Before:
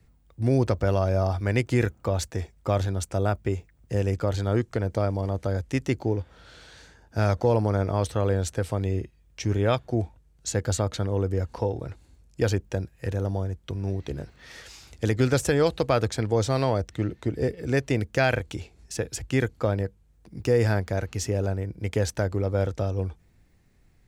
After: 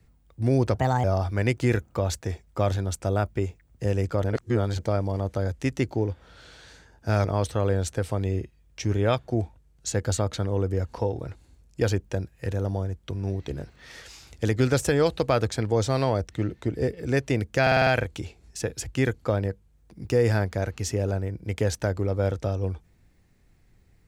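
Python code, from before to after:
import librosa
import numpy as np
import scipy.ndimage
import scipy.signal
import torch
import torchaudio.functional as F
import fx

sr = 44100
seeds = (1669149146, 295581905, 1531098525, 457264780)

y = fx.edit(x, sr, fx.speed_span(start_s=0.75, length_s=0.38, speed=1.32),
    fx.reverse_span(start_s=4.33, length_s=0.55),
    fx.cut(start_s=7.34, length_s=0.51),
    fx.stutter(start_s=18.22, slice_s=0.05, count=6), tone=tone)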